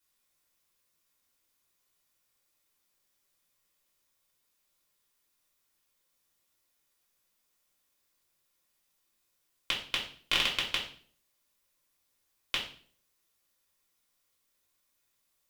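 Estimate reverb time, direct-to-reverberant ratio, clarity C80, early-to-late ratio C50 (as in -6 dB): 0.50 s, -4.5 dB, 12.0 dB, 7.5 dB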